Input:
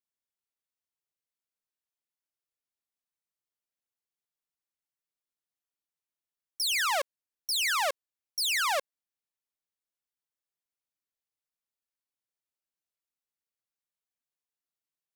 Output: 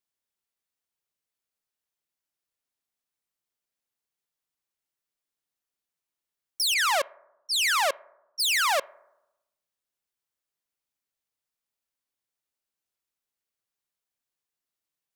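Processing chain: on a send at -22 dB: resonant low-pass 3.1 kHz, resonance Q 2.4 + reverberation RT60 0.95 s, pre-delay 3 ms; 6.74–8.40 s: on the sum: level-controlled noise filter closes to 1.4 kHz, open at -25 dBFS; trim +4 dB

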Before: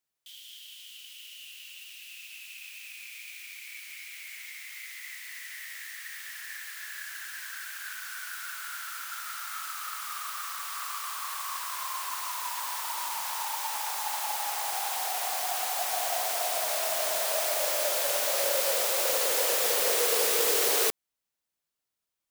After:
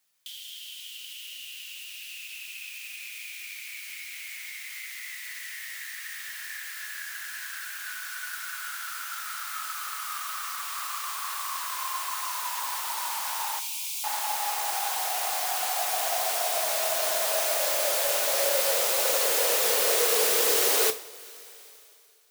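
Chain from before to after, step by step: 13.59–14.04 s: Chebyshev high-pass 2.3 kHz, order 6; companded quantiser 8-bit; two-slope reverb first 0.34 s, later 2.5 s, from -18 dB, DRR 7 dB; tape noise reduction on one side only encoder only; trim +1.5 dB

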